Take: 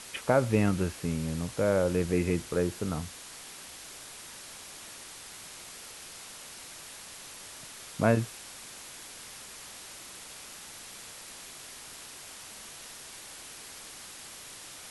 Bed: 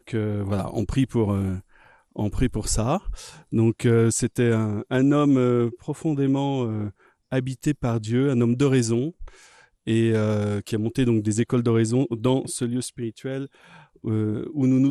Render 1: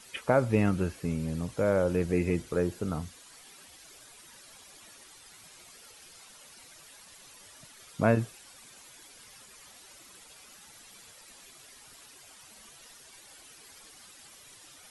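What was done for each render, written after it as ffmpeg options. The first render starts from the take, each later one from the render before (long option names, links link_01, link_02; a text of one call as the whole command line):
ffmpeg -i in.wav -af "afftdn=noise_reduction=11:noise_floor=-46" out.wav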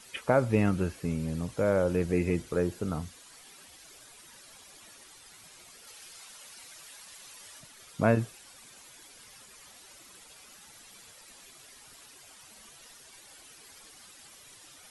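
ffmpeg -i in.wav -filter_complex "[0:a]asettb=1/sr,asplit=3[link_01][link_02][link_03];[link_01]atrim=end=5.874[link_04];[link_02]atrim=start=5.87:end=7.6,asetpts=PTS-STARTPTS,afade=type=in:duration=0.004:curve=qsin,afade=type=out:start_time=1.726:duration=0.004:curve=qsin,tiltshelf=frequency=630:gain=-3.5[link_05];[link_03]atrim=start=7.596[link_06];[link_04][link_05]acrossfade=duration=0.004:curve1=hsin:curve2=qsin[link_07];[link_07][link_06]acrossfade=duration=0.004:curve1=qsin:curve2=hsin" out.wav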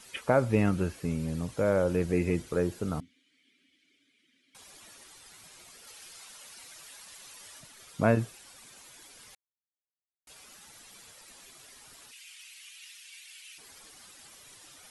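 ffmpeg -i in.wav -filter_complex "[0:a]asettb=1/sr,asplit=3[link_01][link_02][link_03];[link_01]atrim=end=3.004[link_04];[link_02]atrim=start=3:end=4.55,asetpts=PTS-STARTPTS,afade=type=in:duration=0.004:curve=qsin,afade=type=out:start_time=1.546:duration=0.004:curve=qsin,asplit=3[link_05][link_06][link_07];[link_05]bandpass=frequency=270:width_type=q:width=8,volume=0dB[link_08];[link_06]bandpass=frequency=2290:width_type=q:width=8,volume=-6dB[link_09];[link_07]bandpass=frequency=3010:width_type=q:width=8,volume=-9dB[link_10];[link_08][link_09][link_10]amix=inputs=3:normalize=0[link_11];[link_03]atrim=start=4.546[link_12];[link_04][link_11]acrossfade=duration=0.004:curve1=hsin:curve2=qsin[link_13];[link_13][link_12]acrossfade=duration=0.004:curve1=qsin:curve2=hsin,asplit=3[link_14][link_15][link_16];[link_14]afade=type=out:start_time=12.11:duration=0.02[link_17];[link_15]highpass=frequency=2500:width_type=q:width=3.2,afade=type=in:start_time=12.11:duration=0.02,afade=type=out:start_time=13.57:duration=0.02[link_18];[link_16]afade=type=in:start_time=13.57:duration=0.02[link_19];[link_17][link_18][link_19]amix=inputs=3:normalize=0,asplit=3[link_20][link_21][link_22];[link_20]atrim=end=9.35,asetpts=PTS-STARTPTS,afade=type=out:start_time=9.346:duration=0.004:curve=hsin[link_23];[link_21]atrim=start=9.35:end=10.27,asetpts=PTS-STARTPTS,volume=0[link_24];[link_22]atrim=start=10.27,asetpts=PTS-STARTPTS,afade=type=in:duration=0.004:curve=hsin[link_25];[link_23][link_24][link_25]concat=n=3:v=0:a=1" out.wav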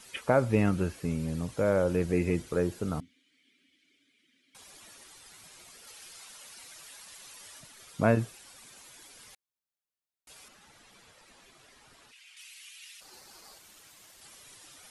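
ffmpeg -i in.wav -filter_complex "[0:a]asettb=1/sr,asplit=3[link_01][link_02][link_03];[link_01]atrim=end=10.484[link_04];[link_02]atrim=start=10.48:end=12.37,asetpts=PTS-STARTPTS,afade=type=in:duration=0.004:curve=qsin,afade=type=out:start_time=1.886:duration=0.004:curve=qsin,lowpass=frequency=2500:poles=1[link_05];[link_03]atrim=start=12.366[link_06];[link_04][link_05]acrossfade=duration=0.004:curve1=hsin:curve2=qsin[link_07];[link_07][link_06]acrossfade=duration=0.004:curve1=qsin:curve2=hsin,asplit=3[link_08][link_09][link_10];[link_08]afade=type=out:start_time=13:duration=0.02[link_11];[link_09]aeval=exprs='val(0)*sin(2*PI*1900*n/s)':channel_layout=same,afade=type=in:start_time=13:duration=0.02,afade=type=out:start_time=14.2:duration=0.02[link_12];[link_10]afade=type=in:start_time=14.2:duration=0.02[link_13];[link_11][link_12][link_13]amix=inputs=3:normalize=0" out.wav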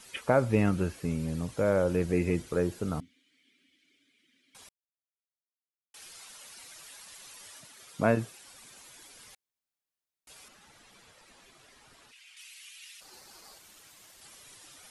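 ffmpeg -i in.wav -filter_complex "[0:a]asettb=1/sr,asplit=3[link_01][link_02][link_03];[link_01]atrim=end=7.514[link_04];[link_02]atrim=start=7.51:end=8.47,asetpts=PTS-STARTPTS,afade=type=in:duration=0.004:curve=qsin,afade=type=out:start_time=0.956:duration=0.004:curve=qsin,highpass=frequency=140:poles=1[link_05];[link_03]atrim=start=8.466[link_06];[link_04][link_05]acrossfade=duration=0.004:curve1=hsin:curve2=qsin[link_07];[link_07][link_06]acrossfade=duration=0.004:curve1=qsin:curve2=hsin,asplit=3[link_08][link_09][link_10];[link_08]atrim=end=4.69,asetpts=PTS-STARTPTS,afade=type=out:start_time=4.686:duration=0.004:curve=hsin[link_11];[link_09]atrim=start=4.69:end=5.94,asetpts=PTS-STARTPTS,volume=0[link_12];[link_10]atrim=start=5.94,asetpts=PTS-STARTPTS,afade=type=in:duration=0.004:curve=hsin[link_13];[link_11][link_12][link_13]concat=n=3:v=0:a=1" out.wav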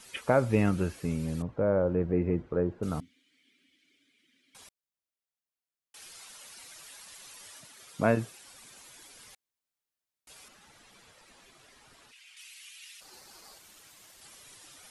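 ffmpeg -i in.wav -filter_complex "[0:a]asettb=1/sr,asplit=3[link_01][link_02][link_03];[link_01]atrim=end=1.424[link_04];[link_02]atrim=start=1.42:end=2.83,asetpts=PTS-STARTPTS,afade=type=in:duration=0.004:curve=qsin,afade=type=out:start_time=1.406:duration=0.004:curve=qsin,lowpass=1200[link_05];[link_03]atrim=start=2.826[link_06];[link_04][link_05]acrossfade=duration=0.004:curve1=hsin:curve2=qsin[link_07];[link_07][link_06]acrossfade=duration=0.004:curve1=qsin:curve2=hsin" out.wav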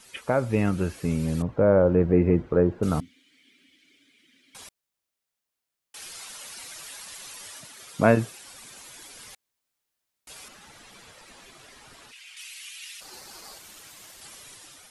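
ffmpeg -i in.wav -af "dynaudnorm=framelen=380:gausssize=5:maxgain=8dB" out.wav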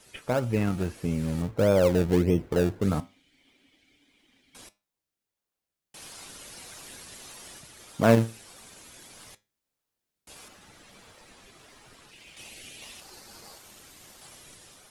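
ffmpeg -i in.wav -filter_complex "[0:a]flanger=delay=8:depth=2.6:regen=80:speed=0.14:shape=triangular,asplit=2[link_01][link_02];[link_02]acrusher=samples=29:mix=1:aa=0.000001:lfo=1:lforange=29:lforate=1.6,volume=-8dB[link_03];[link_01][link_03]amix=inputs=2:normalize=0" out.wav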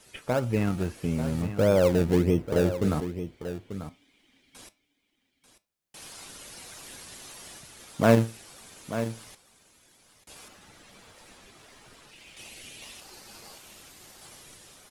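ffmpeg -i in.wav -af "aecho=1:1:890:0.282" out.wav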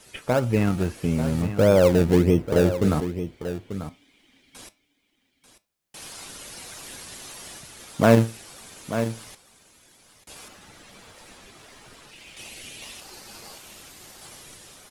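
ffmpeg -i in.wav -af "volume=4.5dB,alimiter=limit=-2dB:level=0:latency=1" out.wav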